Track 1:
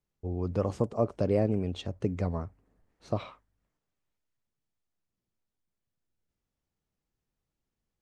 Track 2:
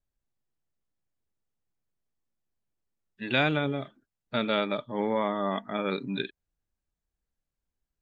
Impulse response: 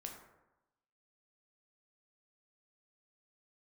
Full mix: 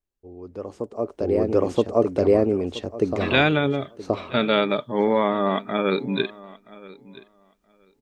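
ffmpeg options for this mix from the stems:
-filter_complex "[0:a]lowshelf=f=210:t=q:w=1.5:g=-7,volume=1.06,asplit=2[s0][s1];[s1]volume=0.631[s2];[1:a]volume=0.631,asplit=3[s3][s4][s5];[s4]volume=0.0944[s6];[s5]apad=whole_len=353484[s7];[s0][s7]sidechaingate=range=0.355:threshold=0.002:ratio=16:detection=peak[s8];[s2][s6]amix=inputs=2:normalize=0,aecho=0:1:974|1948|2922:1|0.15|0.0225[s9];[s8][s3][s9]amix=inputs=3:normalize=0,equalizer=f=400:w=3.2:g=4,dynaudnorm=f=140:g=13:m=3.35"

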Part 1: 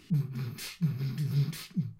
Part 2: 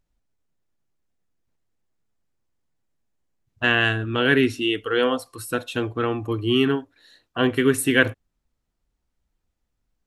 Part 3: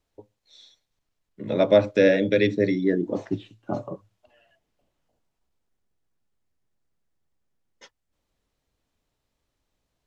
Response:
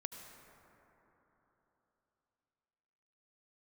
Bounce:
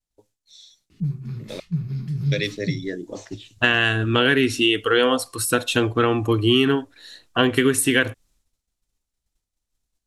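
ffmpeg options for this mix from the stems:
-filter_complex "[0:a]lowshelf=f=350:g=11,adelay=900,volume=0.501[s0];[1:a]volume=1.26[s1];[2:a]crystalizer=i=4.5:c=0,asubboost=boost=10:cutoff=58,volume=0.335,asplit=3[s2][s3][s4];[s2]atrim=end=1.6,asetpts=PTS-STARTPTS,afade=t=out:st=1.596:d=0.004:c=hsin[s5];[s3]atrim=start=1.6:end=2.31,asetpts=PTS-STARTPTS,volume=0[s6];[s4]atrim=start=2.31,asetpts=PTS-STARTPTS,afade=t=in:d=0.004:c=hsin[s7];[s5][s6][s7]concat=n=3:v=0:a=1[s8];[s1][s8]amix=inputs=2:normalize=0,highshelf=f=4200:g=9.5,acompressor=threshold=0.126:ratio=6,volume=1[s9];[s0][s9]amix=inputs=2:normalize=0,agate=range=0.0224:threshold=0.00112:ratio=3:detection=peak,lowpass=10000,dynaudnorm=f=530:g=9:m=3.76"

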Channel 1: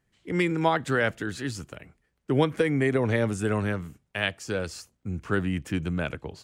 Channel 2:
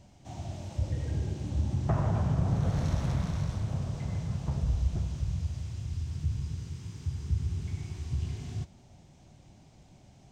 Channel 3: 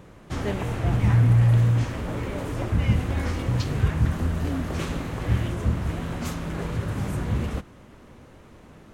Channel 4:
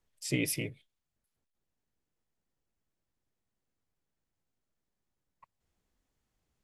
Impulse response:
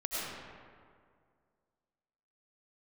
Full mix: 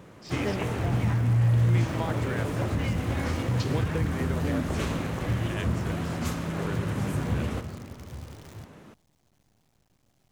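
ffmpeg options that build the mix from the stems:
-filter_complex "[0:a]adelay=1350,volume=0.266[s0];[1:a]acrusher=bits=7:dc=4:mix=0:aa=0.000001,volume=0.335[s1];[2:a]highpass=94,alimiter=limit=0.133:level=0:latency=1:release=118,volume=0.841,asplit=2[s2][s3];[s3]volume=0.188[s4];[3:a]lowpass=f=5000:w=0.5412,lowpass=f=5000:w=1.3066,volume=0.75[s5];[4:a]atrim=start_sample=2205[s6];[s4][s6]afir=irnorm=-1:irlink=0[s7];[s0][s1][s2][s5][s7]amix=inputs=5:normalize=0"

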